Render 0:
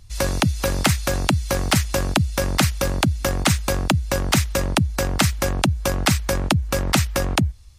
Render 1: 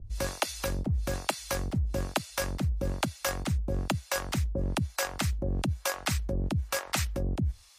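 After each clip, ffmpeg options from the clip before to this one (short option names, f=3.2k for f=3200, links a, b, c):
-filter_complex "[0:a]acrossover=split=560[a][b];[a]aeval=exprs='val(0)*(1-1/2+1/2*cos(2*PI*1.1*n/s))':c=same[c];[b]aeval=exprs='val(0)*(1-1/2-1/2*cos(2*PI*1.1*n/s))':c=same[d];[c][d]amix=inputs=2:normalize=0,areverse,acompressor=threshold=-31dB:ratio=6,areverse,volume=4dB"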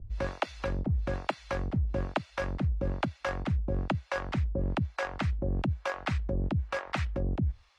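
-af "lowpass=2.4k"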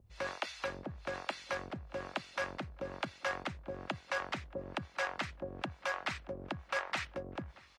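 -filter_complex "[0:a]alimiter=level_in=1dB:limit=-24dB:level=0:latency=1:release=11,volume=-1dB,highpass=f=1k:p=1,asplit=2[a][b];[b]adelay=629,lowpass=f=2.1k:p=1,volume=-20dB,asplit=2[c][d];[d]adelay=629,lowpass=f=2.1k:p=1,volume=0.39,asplit=2[e][f];[f]adelay=629,lowpass=f=2.1k:p=1,volume=0.39[g];[a][c][e][g]amix=inputs=4:normalize=0,volume=3.5dB"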